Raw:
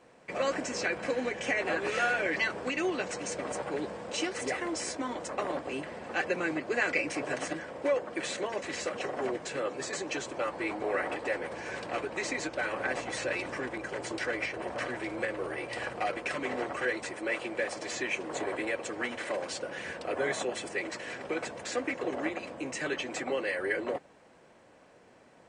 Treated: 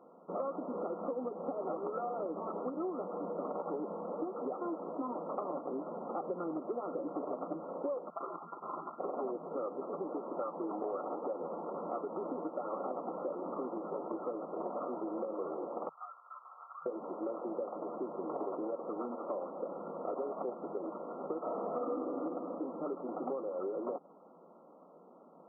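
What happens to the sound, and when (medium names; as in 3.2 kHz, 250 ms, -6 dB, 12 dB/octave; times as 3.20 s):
8.10–9.00 s: frequency inversion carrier 3 kHz
15.89–16.86 s: inverse Chebyshev high-pass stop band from 240 Hz, stop band 80 dB
21.38–21.97 s: reverb throw, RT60 1.8 s, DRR -9 dB
whole clip: FFT band-pass 160–1400 Hz; compression, threshold -35 dBFS; trim +1 dB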